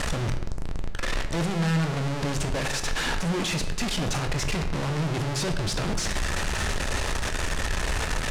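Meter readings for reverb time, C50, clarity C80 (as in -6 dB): not exponential, 9.5 dB, 11.5 dB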